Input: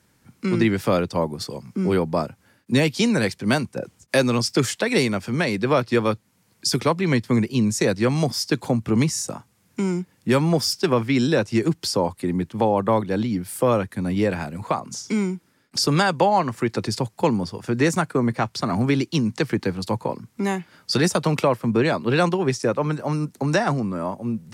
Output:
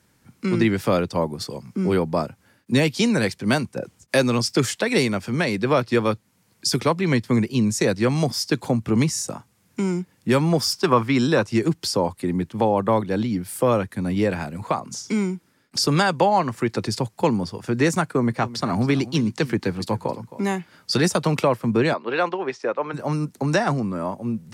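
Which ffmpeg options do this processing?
-filter_complex "[0:a]asettb=1/sr,asplit=3[s0][s1][s2];[s0]atrim=end=10.614[s3];[s1]atrim=start=10.61:end=11.48,asetpts=PTS-STARTPTS,afade=t=in:d=0.004:c=qsin,afade=t=out:st=0.866:d=0.004:c=qsin,equalizer=f=1100:w=2.1:g=8[s4];[s2]atrim=start=11.476[s5];[s3][s4]acrossfade=d=0.004:c1=hsin:c2=qsin[s6];[s6][s5]acrossfade=d=0.004:c1=qsin:c2=hsin,asettb=1/sr,asplit=3[s7][s8][s9];[s7]atrim=end=18.154[s10];[s8]atrim=start=18.15:end=20.57,asetpts=PTS-STARTPTS,afade=t=in:d=0.004:c=qsin,afade=t=out:st=2.416:d=0.004:c=qsin,aecho=1:1:266:0.158,atrim=end_sample=106722[s11];[s9]atrim=start=20.566[s12];[s10][s11]acrossfade=d=0.004:c1=hsin:c2=qsin[s13];[s13][s12]acrossfade=d=0.004:c1=qsin:c2=hsin,asplit=3[s14][s15][s16];[s14]afade=t=out:st=21.93:d=0.02[s17];[s15]highpass=440,lowpass=2900,afade=t=in:st=21.93:d=0.02,afade=t=out:st=22.93:d=0.02[s18];[s16]afade=t=in:st=22.93:d=0.02[s19];[s17][s18][s19]amix=inputs=3:normalize=0"

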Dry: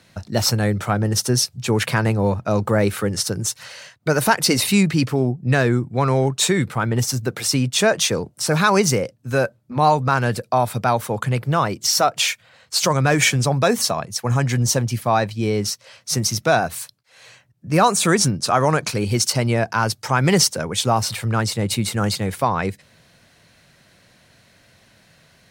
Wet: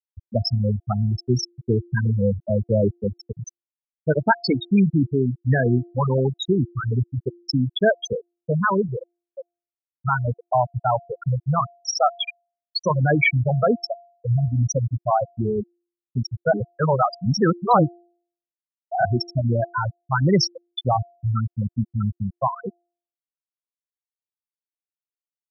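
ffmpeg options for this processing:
-filter_complex "[0:a]asplit=4[s0][s1][s2][s3];[s0]atrim=end=10.05,asetpts=PTS-STARTPTS,afade=t=out:st=8.29:d=1.76[s4];[s1]atrim=start=10.05:end=16.532,asetpts=PTS-STARTPTS,afade=t=in:d=0.004:c=hsin[s5];[s2]atrim=start=16.528:end=19.052,asetpts=PTS-STARTPTS,areverse[s6];[s3]atrim=start=19.048[s7];[s4][s5]concat=n=2:v=0:a=1[s8];[s8][s6]acrossfade=d=0.004:c1=hsin:c2=hsin[s9];[s9][s7]acrossfade=d=0.004:c1=hsin:c2=hsin,afftfilt=real='re*gte(hypot(re,im),0.562)':imag='im*gte(hypot(re,im),0.562)':win_size=1024:overlap=0.75,equalizer=f=2500:w=2.2:g=3.5,bandreject=f=347.2:t=h:w=4,bandreject=f=694.4:t=h:w=4"

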